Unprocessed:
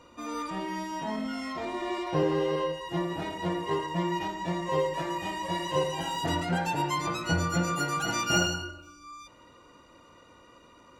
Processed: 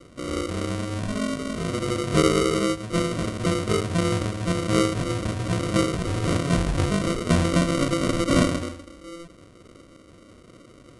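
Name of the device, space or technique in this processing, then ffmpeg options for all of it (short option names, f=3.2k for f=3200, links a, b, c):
crushed at another speed: -af "asetrate=88200,aresample=44100,acrusher=samples=26:mix=1:aa=0.000001,asetrate=22050,aresample=44100,volume=6.5dB"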